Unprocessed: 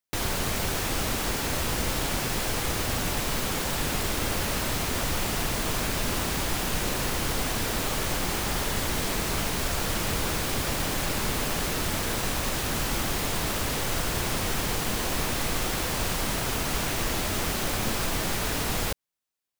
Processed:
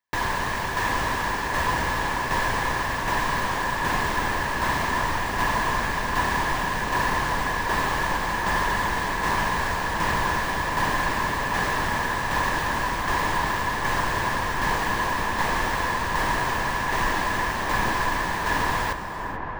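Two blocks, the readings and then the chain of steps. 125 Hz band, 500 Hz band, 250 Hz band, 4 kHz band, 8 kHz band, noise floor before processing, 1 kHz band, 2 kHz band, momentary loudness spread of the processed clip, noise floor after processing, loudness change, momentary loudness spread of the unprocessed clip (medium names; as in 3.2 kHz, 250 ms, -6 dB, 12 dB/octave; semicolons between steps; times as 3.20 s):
-0.5 dB, +1.5 dB, 0.0 dB, -2.5 dB, -6.5 dB, -30 dBFS, +10.0 dB, +8.0 dB, 2 LU, -28 dBFS, +3.0 dB, 0 LU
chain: peaking EQ 14 kHz -10 dB 1.3 oct; small resonant body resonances 1/1.7 kHz, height 17 dB, ringing for 20 ms; tremolo saw down 1.3 Hz, depth 40%; feedback echo behind a low-pass 739 ms, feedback 64%, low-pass 1.5 kHz, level -7.5 dB; gated-style reverb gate 460 ms rising, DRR 11.5 dB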